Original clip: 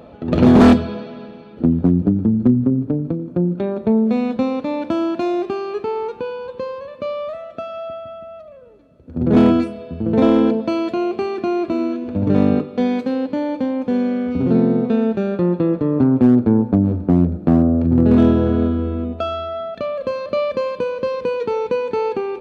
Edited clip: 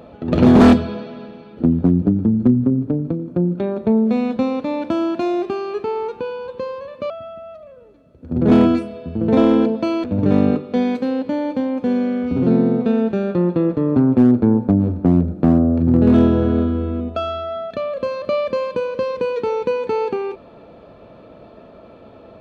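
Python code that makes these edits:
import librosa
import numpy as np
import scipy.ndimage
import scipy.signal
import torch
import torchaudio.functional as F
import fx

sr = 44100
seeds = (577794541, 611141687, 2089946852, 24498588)

y = fx.edit(x, sr, fx.cut(start_s=7.1, length_s=0.85),
    fx.cut(start_s=10.89, length_s=1.19), tone=tone)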